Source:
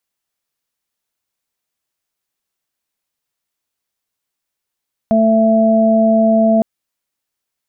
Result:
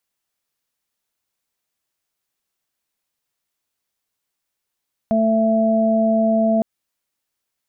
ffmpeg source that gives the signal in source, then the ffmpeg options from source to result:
-f lavfi -i "aevalsrc='0.266*sin(2*PI*222*t)+0.0447*sin(2*PI*444*t)+0.266*sin(2*PI*666*t)':d=1.51:s=44100"
-af "alimiter=limit=0.251:level=0:latency=1:release=100"

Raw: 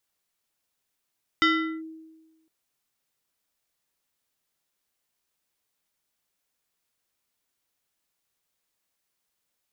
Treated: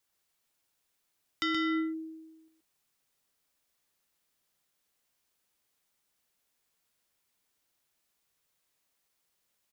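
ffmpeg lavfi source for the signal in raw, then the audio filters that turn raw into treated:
-f lavfi -i "aevalsrc='0.168*pow(10,-3*t/1.24)*sin(2*PI*320*t+1.7*clip(1-t/0.4,0,1)*sin(2*PI*5.25*320*t))':d=1.06:s=44100"
-filter_complex "[0:a]aecho=1:1:125:0.631,acrossover=split=340[s0][s1];[s1]acompressor=threshold=0.0631:ratio=6[s2];[s0][s2]amix=inputs=2:normalize=0,acrossover=split=3500[s3][s4];[s3]alimiter=level_in=1.06:limit=0.0631:level=0:latency=1,volume=0.944[s5];[s5][s4]amix=inputs=2:normalize=0"

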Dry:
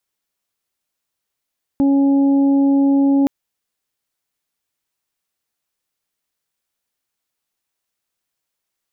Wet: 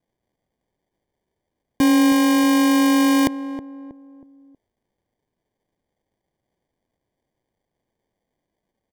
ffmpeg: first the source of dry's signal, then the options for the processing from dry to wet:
-f lavfi -i "aevalsrc='0.282*sin(2*PI*277*t)+0.0473*sin(2*PI*554*t)+0.0316*sin(2*PI*831*t)':d=1.47:s=44100"
-filter_complex "[0:a]acrossover=split=230[s0][s1];[s1]acrusher=samples=33:mix=1:aa=0.000001[s2];[s0][s2]amix=inputs=2:normalize=0,asplit=2[s3][s4];[s4]adelay=319,lowpass=f=810:p=1,volume=0.282,asplit=2[s5][s6];[s6]adelay=319,lowpass=f=810:p=1,volume=0.43,asplit=2[s7][s8];[s8]adelay=319,lowpass=f=810:p=1,volume=0.43,asplit=2[s9][s10];[s10]adelay=319,lowpass=f=810:p=1,volume=0.43[s11];[s3][s5][s7][s9][s11]amix=inputs=5:normalize=0"

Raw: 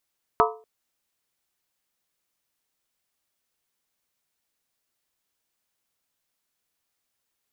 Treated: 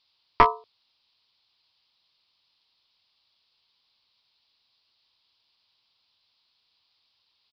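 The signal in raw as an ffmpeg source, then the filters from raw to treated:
-f lavfi -i "aevalsrc='0.119*pow(10,-3*t/0.39)*sin(2*PI*439*t)+0.119*pow(10,-3*t/0.309)*sin(2*PI*699.8*t)+0.119*pow(10,-3*t/0.267)*sin(2*PI*937.7*t)+0.119*pow(10,-3*t/0.257)*sin(2*PI*1007.9*t)+0.119*pow(10,-3*t/0.239)*sin(2*PI*1164.7*t)+0.119*pow(10,-3*t/0.228)*sin(2*PI*1281*t)':d=0.24:s=44100"
-af "equalizer=f=100:t=o:w=0.67:g=8,equalizer=f=1000:t=o:w=0.67:g=10,equalizer=f=4000:t=o:w=0.67:g=6,aexciter=amount=2.5:drive=8.9:freq=2500,aresample=11025,aeval=exprs='clip(val(0),-1,0.168)':c=same,aresample=44100"

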